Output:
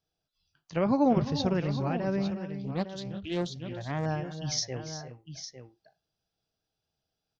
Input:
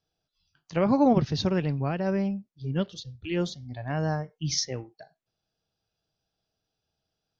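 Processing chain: multi-tap echo 348/373/855 ms -13/-15.5/-11 dB; 2.64–4.06 s: loudspeaker Doppler distortion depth 0.39 ms; trim -3 dB

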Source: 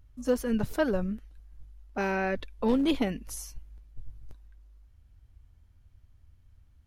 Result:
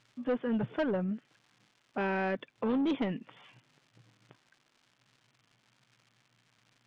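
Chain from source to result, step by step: FFT band-pass 110–3600 Hz; saturation -24.5 dBFS, distortion -12 dB; crackle 290 per s -57 dBFS; distance through air 97 m; tape noise reduction on one side only encoder only

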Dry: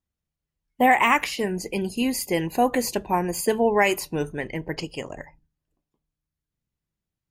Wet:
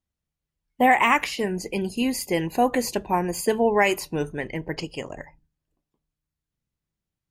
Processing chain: treble shelf 12 kHz -6 dB

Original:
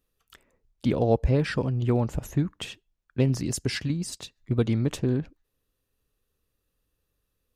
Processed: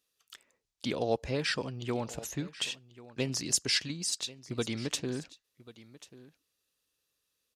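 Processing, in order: high-pass 310 Hz 6 dB/octave; peaking EQ 5.4 kHz +12.5 dB 2.6 oct; delay 1089 ms -18.5 dB; trim -6 dB

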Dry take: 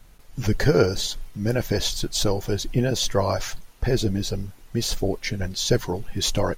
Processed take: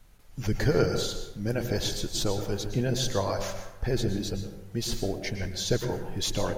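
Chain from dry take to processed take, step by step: plate-style reverb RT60 0.98 s, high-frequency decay 0.45×, pre-delay 100 ms, DRR 6 dB; trim -6 dB

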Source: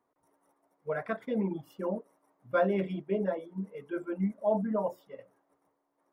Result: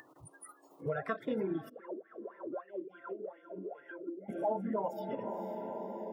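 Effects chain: coarse spectral quantiser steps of 30 dB; graphic EQ with 31 bands 200 Hz -8 dB, 315 Hz +11 dB, 1.6 kHz -5 dB; echo that smears into a reverb 484 ms, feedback 49%, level -15.5 dB; compression 3:1, threshold -44 dBFS, peak gain reduction 16.5 dB; spectral noise reduction 26 dB; 1.68–4.28 s: wah-wah 4.5 Hz -> 1.7 Hz 290–2000 Hz, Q 11; dynamic bell 420 Hz, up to -3 dB, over -52 dBFS, Q 1.2; upward compressor, threshold -45 dBFS; high-pass 99 Hz; band-stop 2.3 kHz, Q 11; trim +10.5 dB

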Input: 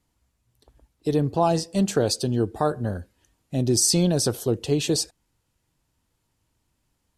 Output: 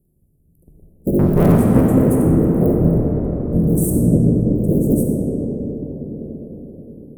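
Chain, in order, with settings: cycle switcher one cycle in 3, inverted; inverse Chebyshev band-stop 1.5–4.3 kHz, stop band 70 dB; peaking EQ 160 Hz +8 dB 0.44 oct; peak limiter -17.5 dBFS, peak gain reduction 8 dB; 1.19–1.81 s: waveshaping leveller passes 2; 3.90–4.56 s: tape spacing loss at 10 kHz 27 dB; reverberation RT60 5.4 s, pre-delay 5 ms, DRR -2 dB; trim +8 dB

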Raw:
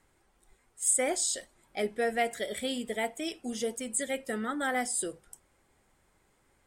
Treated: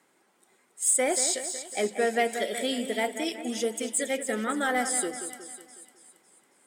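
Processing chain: high-pass 190 Hz 24 dB/octave; in parallel at -5 dB: hard clipper -25.5 dBFS, distortion -13 dB; on the sum: two-band feedback delay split 2.7 kHz, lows 183 ms, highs 276 ms, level -9.5 dB

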